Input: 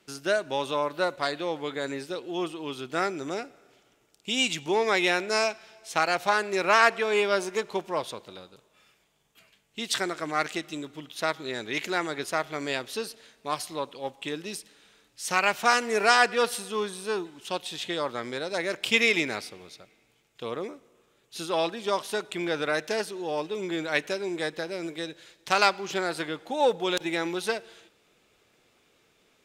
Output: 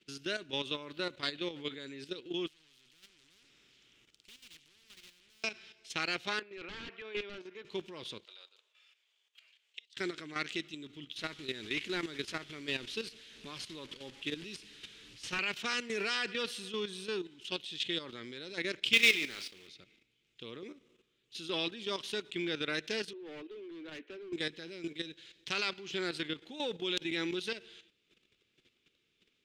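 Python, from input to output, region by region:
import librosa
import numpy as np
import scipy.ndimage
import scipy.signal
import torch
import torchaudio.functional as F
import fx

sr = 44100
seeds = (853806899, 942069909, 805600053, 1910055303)

y = fx.chain(x, sr, fx.echo_single(ms=73, db=-21.5),
    fx.tube_stage(drive_db=36.0, bias=0.35),
    fx.spectral_comp(ratio=4.0), at=(2.47, 5.44))
y = fx.chain(y, sr, fx.highpass(hz=750.0, slope=6),
    fx.overflow_wrap(gain_db=18.5),
    fx.spacing_loss(db_at_10k=33), at=(6.39, 7.65))
y = fx.chain(y, sr, fx.highpass(hz=590.0, slope=24),
    fx.peak_eq(hz=11000.0, db=-5.0, octaves=0.38),
    fx.gate_flip(shuts_db=-27.0, range_db=-28), at=(8.25, 9.97))
y = fx.chain(y, sr, fx.delta_mod(bps=64000, step_db=-36.5),
    fx.high_shelf(hz=6000.0, db=-2.5), at=(11.17, 15.39))
y = fx.chain(y, sr, fx.block_float(bits=3),
    fx.low_shelf(hz=250.0, db=-10.0),
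    fx.doubler(ms=31.0, db=-13.0), at=(18.93, 19.69))
y = fx.chain(y, sr, fx.steep_highpass(hz=240.0, slope=72),
    fx.spacing_loss(db_at_10k=41),
    fx.clip_hard(threshold_db=-32.5), at=(23.13, 24.33))
y = fx.curve_eq(y, sr, hz=(370.0, 710.0, 3100.0, 12000.0), db=(0, -15, 4, -20))
y = fx.level_steps(y, sr, step_db=11)
y = fx.high_shelf(y, sr, hz=5200.0, db=9.5)
y = y * 10.0 ** (-2.0 / 20.0)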